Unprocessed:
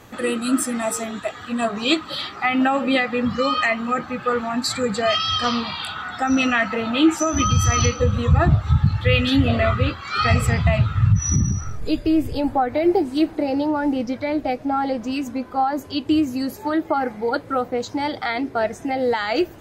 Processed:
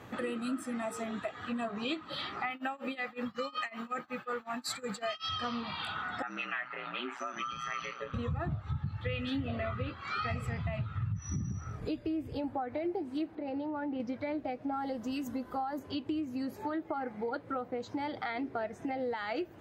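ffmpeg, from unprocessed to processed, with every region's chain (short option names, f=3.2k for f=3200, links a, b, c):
-filter_complex "[0:a]asettb=1/sr,asplit=3[a][b][c];[a]atrim=end=2.504[d];[b]atrim=start=2.5:end=5.29,asetpts=PTS-STARTPTS,afade=t=in:d=0.004:c=qsin,afade=t=out:st=2.786:d=0.004:c=qsin,aemphasis=mode=production:type=bsi,tremolo=f=5.4:d=0.95[e];[c]atrim=start=5.286[f];[d][e]acrossfade=d=0.004:c1=hsin:c2=qsin[g];[g][f]acrossfade=d=0.004:c1=qsin:c2=hsin,asettb=1/sr,asplit=3[h][i][j];[h]atrim=end=6.224[k];[i]atrim=start=6.22:end=8.14,asetpts=PTS-STARTPTS,afade=t=in:d=0.004:c=qsin,afade=t=out:st=1.916:d=0.004:c=qsin,bandpass=f=1.9k:t=q:w=1.1,aeval=exprs='val(0)*sin(2*PI*60*n/s)':c=same[l];[j]atrim=start=8.136[m];[k][l]acrossfade=d=0.004:c1=hsin:c2=qsin[n];[n][m]acrossfade=d=0.004:c1=qsin:c2=hsin,asettb=1/sr,asplit=3[o][p][q];[o]atrim=end=13.354[r];[p]atrim=start=13.35:end=14,asetpts=PTS-STARTPTS,afade=t=in:d=0.004:c=qsin,afade=t=out:st=0.646:d=0.004:c=qsin,lowpass=f=4.4k:w=0.5412,lowpass=f=4.4k:w=1.3066,acompressor=threshold=-25dB:ratio=4:attack=3.2:release=140:knee=1:detection=peak[s];[q]atrim=start=13.996[t];[r][s]acrossfade=d=0.004:c1=hsin:c2=qsin[u];[u][t]acrossfade=d=0.004:c1=qsin:c2=hsin,asettb=1/sr,asplit=3[v][w][x];[v]atrim=end=14.734[y];[w]atrim=start=14.73:end=15.79,asetpts=PTS-STARTPTS,afade=t=in:d=0.004:c=qsin,afade=t=out:st=1.056:d=0.004:c=qsin,aemphasis=mode=production:type=50fm,bandreject=f=2.4k:w=6.5,aeval=exprs='val(0)+0.00447*(sin(2*PI*50*n/s)+sin(2*PI*2*50*n/s)/2+sin(2*PI*3*50*n/s)/3+sin(2*PI*4*50*n/s)/4+sin(2*PI*5*50*n/s)/5)':c=same[z];[x]atrim=start=15.786[aa];[y][z]acrossfade=d=0.004:c1=hsin:c2=qsin[ab];[ab][aa]acrossfade=d=0.004:c1=qsin:c2=hsin,highpass=84,bass=f=250:g=1,treble=f=4k:g=-10,acompressor=threshold=-31dB:ratio=4,volume=-3.5dB"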